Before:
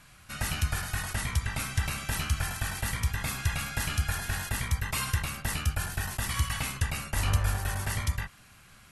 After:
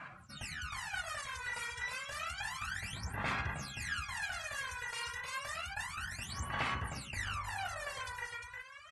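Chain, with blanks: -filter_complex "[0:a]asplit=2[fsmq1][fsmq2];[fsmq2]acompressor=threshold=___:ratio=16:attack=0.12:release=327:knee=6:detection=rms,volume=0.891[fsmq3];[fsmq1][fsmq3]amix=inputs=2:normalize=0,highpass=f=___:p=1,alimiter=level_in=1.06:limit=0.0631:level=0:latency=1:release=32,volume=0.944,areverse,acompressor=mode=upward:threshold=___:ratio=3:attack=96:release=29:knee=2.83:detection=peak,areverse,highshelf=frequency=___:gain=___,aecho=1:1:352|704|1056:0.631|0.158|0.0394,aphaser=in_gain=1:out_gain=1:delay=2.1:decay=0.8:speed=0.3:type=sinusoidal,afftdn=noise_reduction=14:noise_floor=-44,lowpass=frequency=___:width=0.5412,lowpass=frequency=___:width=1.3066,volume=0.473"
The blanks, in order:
0.01, 830, 0.00316, 2.5k, -6.5, 9k, 9k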